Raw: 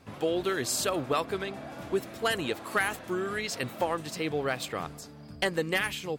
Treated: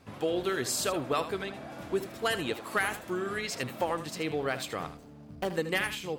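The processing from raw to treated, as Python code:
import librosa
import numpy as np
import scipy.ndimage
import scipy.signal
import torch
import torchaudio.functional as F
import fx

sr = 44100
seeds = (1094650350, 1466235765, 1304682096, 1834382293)

p1 = fx.median_filter(x, sr, points=25, at=(4.97, 5.5))
p2 = p1 + fx.echo_single(p1, sr, ms=78, db=-12.0, dry=0)
y = p2 * 10.0 ** (-1.5 / 20.0)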